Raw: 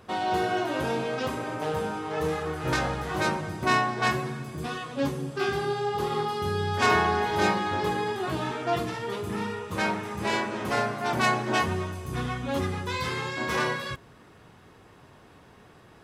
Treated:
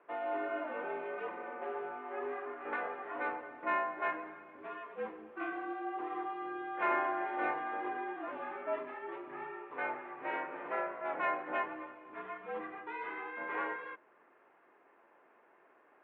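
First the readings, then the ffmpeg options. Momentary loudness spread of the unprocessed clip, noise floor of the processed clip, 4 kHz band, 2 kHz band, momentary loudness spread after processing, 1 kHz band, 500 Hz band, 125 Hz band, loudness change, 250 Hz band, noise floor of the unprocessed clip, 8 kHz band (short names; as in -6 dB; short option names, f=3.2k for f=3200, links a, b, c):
8 LU, -66 dBFS, -25.0 dB, -10.0 dB, 10 LU, -9.0 dB, -10.5 dB, under -35 dB, -10.5 dB, -14.0 dB, -53 dBFS, under -40 dB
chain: -af "highpass=f=430:t=q:w=0.5412,highpass=f=430:t=q:w=1.307,lowpass=f=2.4k:t=q:w=0.5176,lowpass=f=2.4k:t=q:w=0.7071,lowpass=f=2.4k:t=q:w=1.932,afreqshift=-58,volume=-8.5dB"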